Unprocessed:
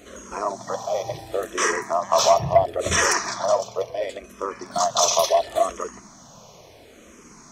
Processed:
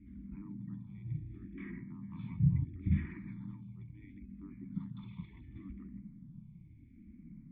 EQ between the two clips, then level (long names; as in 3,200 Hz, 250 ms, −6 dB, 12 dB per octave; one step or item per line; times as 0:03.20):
formant resonators in series u
elliptic band-stop filter 180–2,000 Hz, stop band 70 dB
+15.5 dB